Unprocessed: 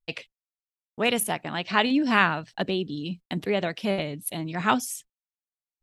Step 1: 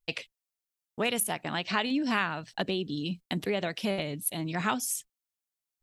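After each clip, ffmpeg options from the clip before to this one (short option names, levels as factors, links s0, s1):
-af "highshelf=f=4400:g=6.5,acompressor=threshold=0.0398:ratio=2.5"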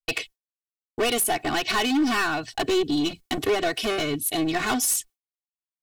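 -af "agate=range=0.0224:threshold=0.00447:ratio=3:detection=peak,volume=35.5,asoftclip=hard,volume=0.0282,aecho=1:1:2.7:0.95,volume=2.66"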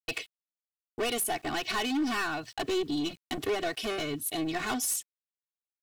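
-af "aeval=exprs='val(0)*gte(abs(val(0)),0.00422)':c=same,volume=0.447"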